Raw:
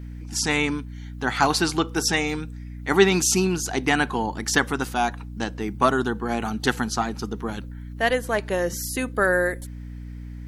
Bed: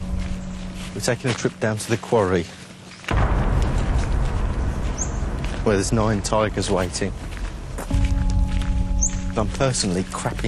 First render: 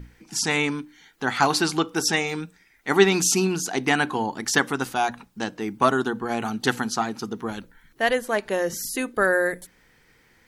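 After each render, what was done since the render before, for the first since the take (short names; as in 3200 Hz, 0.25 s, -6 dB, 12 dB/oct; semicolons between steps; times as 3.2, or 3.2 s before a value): notches 60/120/180/240/300 Hz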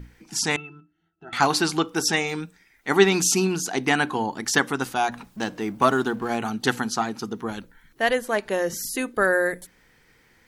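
0.56–1.33 octave resonator E, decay 0.15 s; 5.12–6.37 G.711 law mismatch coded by mu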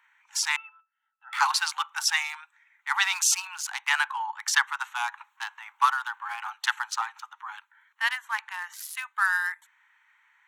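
Wiener smoothing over 9 samples; steep high-pass 850 Hz 96 dB/oct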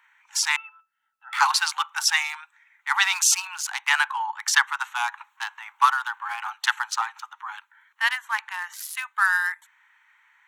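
gain +3.5 dB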